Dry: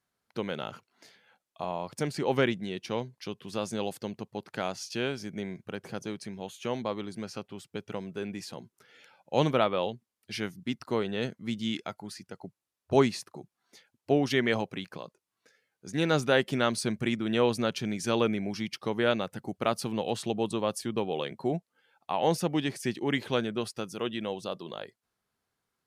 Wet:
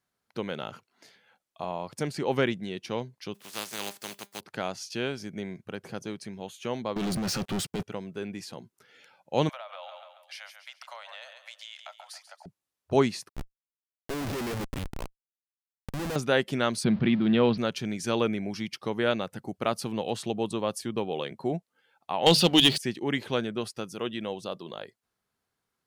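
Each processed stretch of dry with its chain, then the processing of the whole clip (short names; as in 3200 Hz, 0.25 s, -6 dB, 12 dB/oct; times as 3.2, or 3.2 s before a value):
3.34–4.39 spectral contrast lowered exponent 0.28 + HPF 150 Hz + resonator 200 Hz, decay 0.22 s, mix 40%
6.96–7.83 bell 160 Hz +3.5 dB 1.2 oct + negative-ratio compressor -37 dBFS, ratio -0.5 + sample leveller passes 5
9.49–12.46 steep high-pass 570 Hz 96 dB/oct + feedback echo 0.138 s, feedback 44%, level -14 dB + compressor 10:1, threshold -38 dBFS
13.29–16.16 de-esser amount 100% + Schmitt trigger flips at -34.5 dBFS
16.84–17.58 zero-crossing step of -39.5 dBFS + steep low-pass 4500 Hz 48 dB/oct + bell 180 Hz +11 dB 0.83 oct
22.26–22.78 band shelf 3600 Hz +15 dB 1 oct + notches 50/100/150/200 Hz + sample leveller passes 2
whole clip: dry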